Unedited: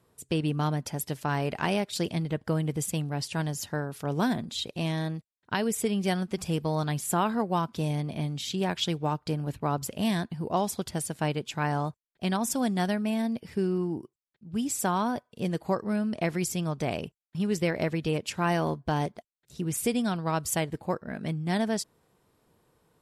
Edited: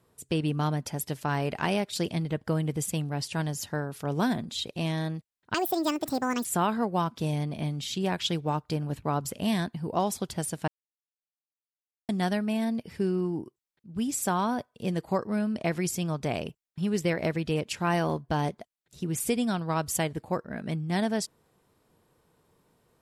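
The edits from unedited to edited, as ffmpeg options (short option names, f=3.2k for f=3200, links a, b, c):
-filter_complex "[0:a]asplit=5[a][b][c][d][e];[a]atrim=end=5.544[f];[b]atrim=start=5.54:end=7.02,asetpts=PTS-STARTPTS,asetrate=71883,aresample=44100[g];[c]atrim=start=7.016:end=11.25,asetpts=PTS-STARTPTS,afade=t=out:st=4.23:d=0.004:c=hsin[h];[d]atrim=start=11.25:end=12.66,asetpts=PTS-STARTPTS,volume=0[i];[e]atrim=start=12.66,asetpts=PTS-STARTPTS,afade=t=in:d=0.004:c=hsin[j];[f][g]acrossfade=d=0.004:c1=hsin:c2=hsin[k];[h][i][j]concat=n=3:v=0:a=1[l];[k][l]acrossfade=d=0.004:c1=hsin:c2=hsin"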